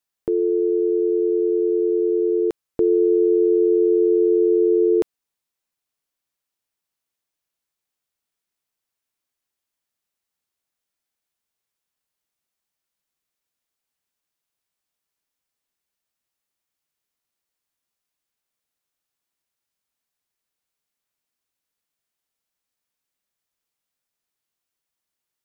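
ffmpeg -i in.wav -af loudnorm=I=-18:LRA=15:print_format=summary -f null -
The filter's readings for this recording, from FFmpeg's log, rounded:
Input Integrated:    -19.0 LUFS
Input True Peak:     -10.4 dBTP
Input LRA:             3.8 LU
Input Threshold:     -29.0 LUFS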